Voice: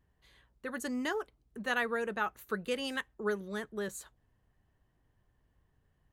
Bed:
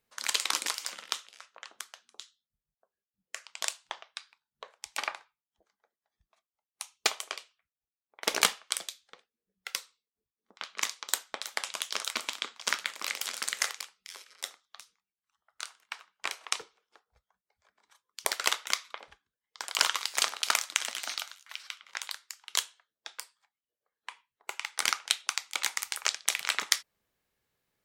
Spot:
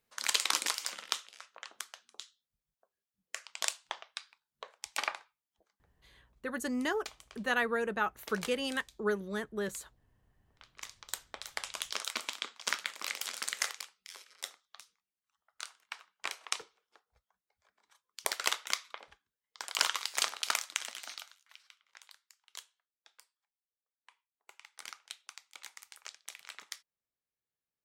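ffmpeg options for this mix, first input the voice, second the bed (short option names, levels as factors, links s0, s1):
-filter_complex "[0:a]adelay=5800,volume=1.19[s0];[1:a]volume=5.01,afade=t=out:st=5.51:d=0.92:silence=0.133352,afade=t=in:st=10.71:d=1.11:silence=0.188365,afade=t=out:st=20.28:d=1.44:silence=0.177828[s1];[s0][s1]amix=inputs=2:normalize=0"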